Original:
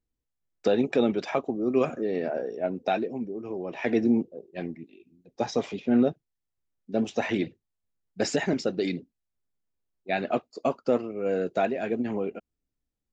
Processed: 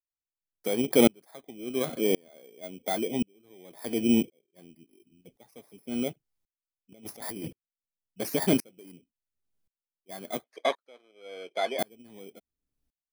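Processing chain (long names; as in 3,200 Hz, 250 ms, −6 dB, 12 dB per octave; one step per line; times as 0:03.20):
samples in bit-reversed order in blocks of 16 samples
0:06.92–0:07.45: compressor whose output falls as the input rises −37 dBFS, ratio −1
0:10.44–0:11.79: band-pass filter 590–3,800 Hz
tremolo with a ramp in dB swelling 0.93 Hz, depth 36 dB
level +6 dB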